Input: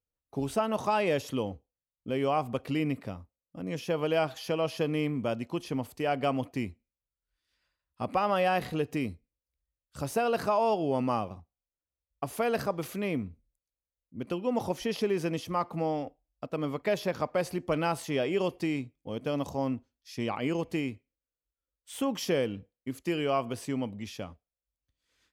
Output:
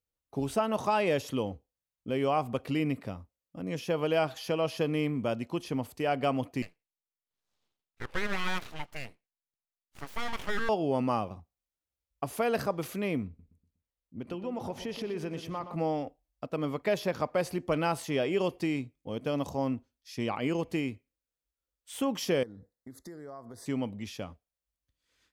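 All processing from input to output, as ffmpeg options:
-filter_complex "[0:a]asettb=1/sr,asplit=3[a][b][c];[a]atrim=end=6.624[d];[b]atrim=start=6.62:end=10.69,asetpts=PTS-STARTPTS,afade=t=in:d=0.004:c=qsin,afade=t=out:st=4.066:d=0.004:c=qsin,highpass=f=770:p=1,highshelf=f=3k:t=q:w=1.5:g=-6,aeval=exprs='abs(val(0))':c=same[e];[c]atrim=start=10.686[f];[d][e]acrossfade=d=0.004:c1=hsin:c2=qsin[g];[g][f]acrossfade=d=0.004:c1=qsin:c2=hsin,asettb=1/sr,asplit=3[h][i][j];[h]atrim=end=13.274[k];[i]atrim=start=13.27:end=15.76,asetpts=PTS-STARTPTS,afade=t=in:d=0.004:c=qsin,afade=t=out:st=2.486:d=0.004:c=qsin,highshelf=f=5.2k:g=-7.5,acompressor=threshold=-34dB:ratio=2.5:attack=3.2:release=140:knee=1:detection=peak,asplit=2[l][m];[m]adelay=121,lowpass=f=3.9k:p=1,volume=-10dB,asplit=2[n][o];[o]adelay=121,lowpass=f=3.9k:p=1,volume=0.39,asplit=2[p][q];[q]adelay=121,lowpass=f=3.9k:p=1,volume=0.39,asplit=2[r][s];[s]adelay=121,lowpass=f=3.9k:p=1,volume=0.39[t];[l][n][p][r][t]amix=inputs=5:normalize=0,atrim=end_sample=109809[u];[j]atrim=start=15.756[v];[k][u]acrossfade=d=0.004:c1=hsin:c2=qsin[w];[w][v]acrossfade=d=0.004:c1=qsin:c2=hsin,asettb=1/sr,asplit=3[x][y][z];[x]atrim=end=22.434[aa];[y]atrim=start=22.43:end=23.66,asetpts=PTS-STARTPTS,afade=t=in:d=0.004:c=qsin,afade=t=out:st=1.226:d=0.004:c=qsin,acompressor=threshold=-44dB:ratio=4:attack=3.2:release=140:knee=1:detection=peak,asuperstop=centerf=2700:order=12:qfactor=1.9[ab];[z]atrim=start=23.656[ac];[aa][ab]acrossfade=d=0.004:c1=hsin:c2=qsin[ad];[ad][ac]acrossfade=d=0.004:c1=qsin:c2=hsin"

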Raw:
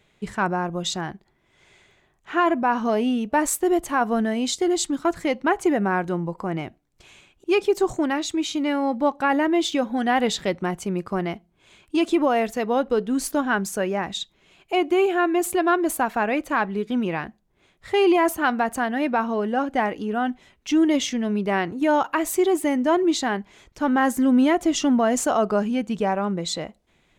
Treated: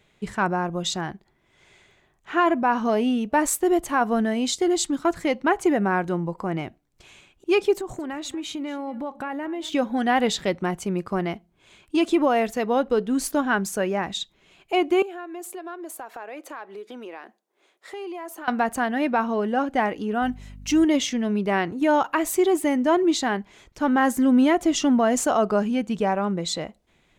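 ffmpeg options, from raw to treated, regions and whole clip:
-filter_complex "[0:a]asettb=1/sr,asplit=3[a][b][c];[a]atrim=end=7.754[d];[b]atrim=start=7.75:end=9.73,asetpts=PTS-STARTPTS,afade=t=in:d=0.004:c=qsin,afade=t=out:st=1.976:d=0.004:c=qsin,equalizer=f=5.3k:w=1.3:g=-6.5,acompressor=threshold=-28dB:ratio=5:attack=3.2:release=140:knee=1:detection=peak,aecho=1:1:227:0.119,atrim=end_sample=87318[e];[c]atrim=start=9.726[f];[d][e]acrossfade=d=0.004:c1=hsin:c2=qsin[g];[g][f]acrossfade=d=0.004:c1=qsin:c2=hsin,asettb=1/sr,asplit=3[h][i][j];[h]atrim=end=15.024[k];[i]atrim=start=15.02:end=18.48,asetpts=PTS-STARTPTS,afade=t=in:d=0.004:c=qsin,afade=t=out:st=3.456:d=0.004:c=qsin,highpass=f=340:w=0.5412,highpass=f=340:w=1.3066,equalizer=f=2.4k:t=o:w=1.6:g=-3,acompressor=threshold=-37dB:ratio=3:attack=3.2:release=140:knee=1:detection=peak[l];[j]atrim=start=18.476[m];[k][l]acrossfade=d=0.004:c1=hsin:c2=qsin[n];[n][m]acrossfade=d=0.004:c1=qsin:c2=hsin,asettb=1/sr,asplit=3[o][p][q];[o]atrim=end=20.224[r];[p]atrim=start=20.22:end=20.85,asetpts=PTS-STARTPTS,afade=t=in:d=0.004:c=qsin,afade=t=out:st=0.626:d=0.004:c=qsin,aemphasis=mode=production:type=cd,bandreject=f=3.4k:w=9.9,aeval=exprs='val(0)+0.01*(sin(2*PI*50*n/s)+sin(2*PI*2*50*n/s)/2+sin(2*PI*3*50*n/s)/3+sin(2*PI*4*50*n/s)/4+sin(2*PI*5*50*n/s)/5)':c=same[s];[q]atrim=start=20.846[t];[r][s]acrossfade=d=0.004:c1=hsin:c2=qsin[u];[u][t]acrossfade=d=0.004:c1=qsin:c2=hsin"

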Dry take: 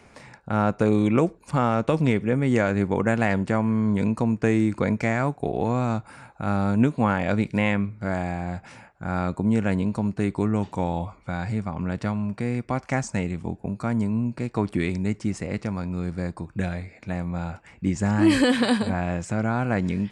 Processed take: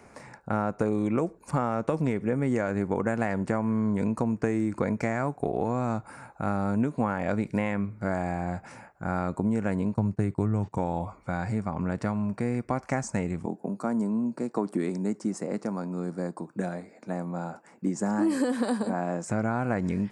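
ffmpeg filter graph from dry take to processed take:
-filter_complex "[0:a]asettb=1/sr,asplit=3[a][b][c];[a]atrim=end=9.944[d];[b]atrim=start=9.94:end=10.78,asetpts=PTS-STARTPTS,afade=t=in:d=0.004:c=qsin,afade=t=out:st=0.836:d=0.004:c=qsin,agate=range=-19dB:threshold=-37dB:ratio=16:release=100:detection=peak,equalizer=f=110:t=o:w=1:g=11[e];[c]atrim=start=10.776[f];[d][e]acrossfade=d=0.004:c1=hsin:c2=qsin[g];[g][f]acrossfade=d=0.004:c1=qsin:c2=hsin,asettb=1/sr,asplit=3[h][i][j];[h]atrim=end=13.464[k];[i]atrim=start=13.46:end=19.28,asetpts=PTS-STARTPTS,afade=t=in:d=0.004:c=qsin,afade=t=out:st=5.816:d=0.004:c=qsin,highpass=f=180:w=0.5412,highpass=f=180:w=1.3066,equalizer=f=2.3k:w=1.3:g=-8.5[l];[j]atrim=start=19.276[m];[k][l]acrossfade=d=0.004:c1=hsin:c2=qsin[n];[n][m]acrossfade=d=0.004:c1=qsin:c2=hsin,lowshelf=f=150:g=-7,acompressor=threshold=-24dB:ratio=6,equalizer=f=3.3k:w=1.2:g=-11,volume=2dB"

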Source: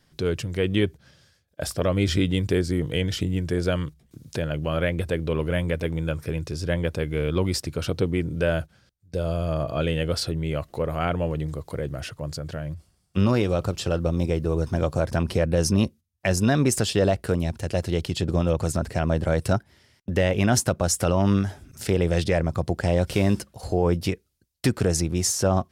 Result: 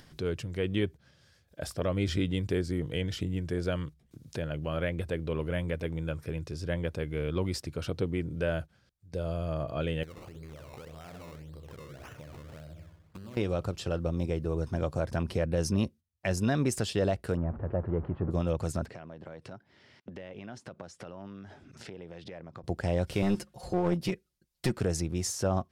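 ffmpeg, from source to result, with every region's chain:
-filter_complex "[0:a]asettb=1/sr,asplit=3[a][b][c];[a]atrim=end=10.034[d];[b]atrim=start=10.03:end=13.37,asetpts=PTS-STARTPTS,afade=t=in:d=0.004:c=qsin,afade=t=out:st=3.336:d=0.004:c=qsin,asplit=2[e][f];[f]adelay=64,lowpass=f=2.3k:p=1,volume=-6dB,asplit=2[g][h];[h]adelay=64,lowpass=f=2.3k:p=1,volume=0.48,asplit=2[i][j];[j]adelay=64,lowpass=f=2.3k:p=1,volume=0.48,asplit=2[k][l];[l]adelay=64,lowpass=f=2.3k:p=1,volume=0.48,asplit=2[m][n];[n]adelay=64,lowpass=f=2.3k:p=1,volume=0.48,asplit=2[o][p];[p]adelay=64,lowpass=f=2.3k:p=1,volume=0.48[q];[e][g][i][k][m][o][q]amix=inputs=7:normalize=0,atrim=end_sample=147294,acompressor=threshold=-35dB:ratio=10:attack=3.2:release=140:knee=1:detection=peak,acrusher=samples=19:mix=1:aa=0.000001:lfo=1:lforange=19:lforate=1.8[r];[c]atrim=start=13.366[s];[d][r]acrossfade=d=0.004:c1=hsin:c2=qsin[t];[t][s]acrossfade=d=0.004:c1=qsin:c2=hsin,asettb=1/sr,asplit=3[u][v][w];[u]atrim=end=17.374[x];[v]atrim=start=17.37:end=18.31,asetpts=PTS-STARTPTS,afade=t=in:d=0.004:c=qsin,afade=t=out:st=0.936:d=0.004:c=qsin,aeval=exprs='val(0)+0.5*0.0316*sgn(val(0))':c=same,lowpass=f=1.4k:w=0.5412,lowpass=f=1.4k:w=1.3066[y];[w]atrim=start=18.306[z];[x][y]acrossfade=d=0.004:c1=hsin:c2=qsin[aa];[aa][z]acrossfade=d=0.004:c1=qsin:c2=hsin,asettb=1/sr,asplit=3[ab][ac][ad];[ab]atrim=end=18.864[ae];[ac]atrim=start=18.86:end=22.64,asetpts=PTS-STARTPTS,afade=t=in:d=0.004:c=qsin,afade=t=out:st=3.776:d=0.004:c=qsin,acompressor=threshold=-30dB:ratio=16:attack=3.2:release=140:knee=1:detection=peak,highpass=150,lowpass=4.5k[af];[ad]atrim=start=22.636[ag];[ae][af]acrossfade=d=0.004:c1=hsin:c2=qsin[ah];[ah][ag]acrossfade=d=0.004:c1=qsin:c2=hsin,asettb=1/sr,asplit=3[ai][aj][ak];[ai]atrim=end=23.224[al];[aj]atrim=start=23.22:end=24.77,asetpts=PTS-STARTPTS,afade=t=in:d=0.004:c=qsin,afade=t=out:st=1.546:d=0.004:c=qsin,aecho=1:1:5.6:0.85,atrim=end_sample=68355,aeval=exprs='clip(val(0),-1,0.0794)':c=same[am];[ak]atrim=start=24.766[an];[al][am]acrossfade=d=0.004:c1=hsin:c2=qsin[ao];[ao][an]acrossfade=d=0.004:c1=qsin:c2=hsin,highshelf=f=5.1k:g=-4.5,acompressor=mode=upward:threshold=-36dB:ratio=2.5,volume=-7dB"

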